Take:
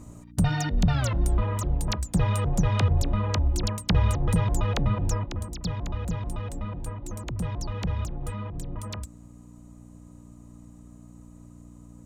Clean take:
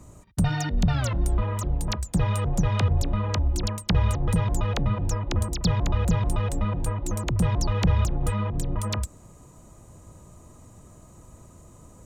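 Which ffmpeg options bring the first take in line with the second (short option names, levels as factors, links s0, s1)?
-af "bandreject=f=59.3:t=h:w=4,bandreject=f=118.6:t=h:w=4,bandreject=f=177.9:t=h:w=4,bandreject=f=237.2:t=h:w=4,bandreject=f=296.5:t=h:w=4,asetnsamples=n=441:p=0,asendcmd='5.26 volume volume 7.5dB',volume=1"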